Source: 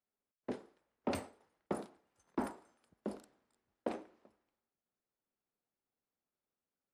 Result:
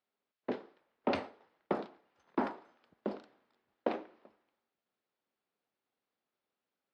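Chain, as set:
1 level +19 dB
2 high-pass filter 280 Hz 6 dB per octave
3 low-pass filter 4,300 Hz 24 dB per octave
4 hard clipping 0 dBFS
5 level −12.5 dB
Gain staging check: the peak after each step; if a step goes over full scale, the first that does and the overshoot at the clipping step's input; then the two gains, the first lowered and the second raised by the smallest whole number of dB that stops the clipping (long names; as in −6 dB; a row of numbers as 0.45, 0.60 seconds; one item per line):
−3.0, −3.5, −3.5, −3.5, −16.0 dBFS
no step passes full scale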